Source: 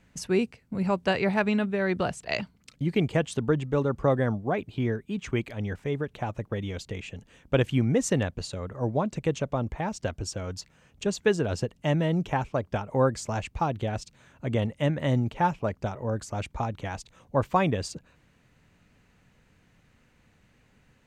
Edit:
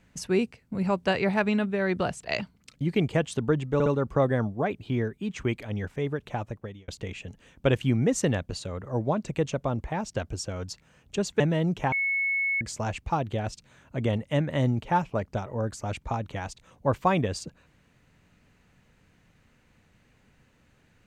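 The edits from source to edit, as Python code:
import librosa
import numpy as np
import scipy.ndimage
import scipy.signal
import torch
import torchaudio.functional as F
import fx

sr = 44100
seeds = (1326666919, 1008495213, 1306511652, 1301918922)

y = fx.edit(x, sr, fx.stutter(start_s=3.74, slice_s=0.06, count=3),
    fx.fade_out_span(start_s=6.27, length_s=0.49),
    fx.cut(start_s=11.28, length_s=0.61),
    fx.bleep(start_s=12.41, length_s=0.69, hz=2200.0, db=-23.5), tone=tone)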